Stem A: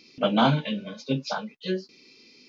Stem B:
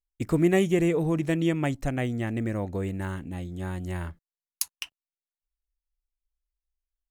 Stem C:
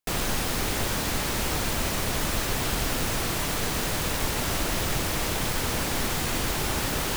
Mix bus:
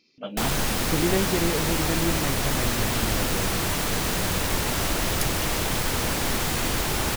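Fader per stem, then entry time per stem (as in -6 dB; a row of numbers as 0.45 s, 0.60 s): -11.0 dB, -3.5 dB, +2.0 dB; 0.00 s, 0.60 s, 0.30 s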